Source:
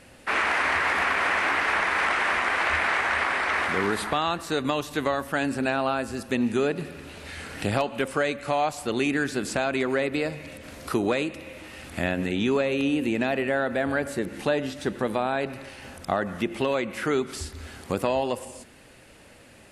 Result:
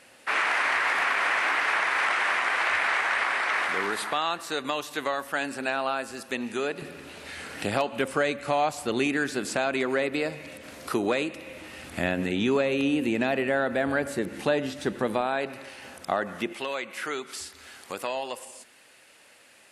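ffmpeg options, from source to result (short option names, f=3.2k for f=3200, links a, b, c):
-af "asetnsamples=n=441:p=0,asendcmd='6.82 highpass f 240;7.93 highpass f 100;9.07 highpass f 230;11.49 highpass f 100;15.21 highpass f 350;16.53 highpass f 1200',highpass=f=660:p=1"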